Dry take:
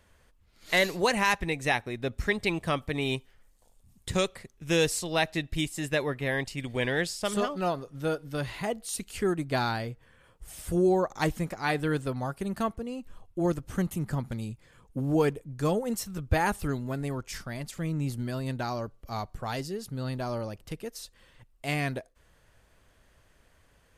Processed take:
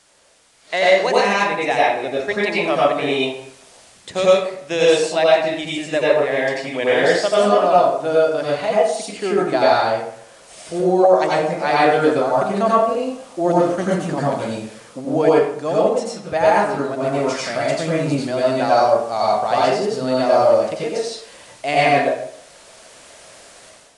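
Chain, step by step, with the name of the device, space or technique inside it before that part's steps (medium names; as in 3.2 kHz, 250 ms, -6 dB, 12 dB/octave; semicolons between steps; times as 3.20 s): filmed off a television (band-pass 280–7200 Hz; peaking EQ 650 Hz +9 dB 0.55 oct; reverberation RT60 0.65 s, pre-delay 83 ms, DRR -6 dB; white noise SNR 30 dB; level rider gain up to 11.5 dB; trim -1.5 dB; AAC 96 kbps 22.05 kHz)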